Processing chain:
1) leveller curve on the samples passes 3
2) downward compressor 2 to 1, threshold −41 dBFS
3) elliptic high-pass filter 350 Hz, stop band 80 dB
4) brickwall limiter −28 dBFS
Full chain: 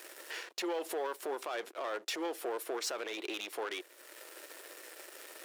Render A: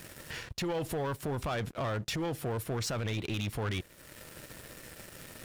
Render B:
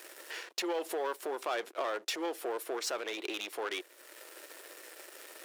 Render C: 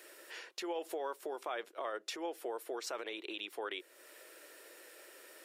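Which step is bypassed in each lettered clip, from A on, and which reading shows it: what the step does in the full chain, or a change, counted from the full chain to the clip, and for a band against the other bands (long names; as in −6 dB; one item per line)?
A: 3, 250 Hz band +5.5 dB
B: 4, change in crest factor +5.0 dB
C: 1, change in momentary loudness spread +1 LU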